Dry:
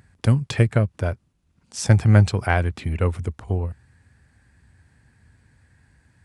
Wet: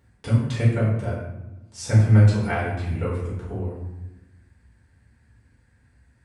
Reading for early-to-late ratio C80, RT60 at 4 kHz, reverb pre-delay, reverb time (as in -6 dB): 5.0 dB, 0.55 s, 4 ms, 1.0 s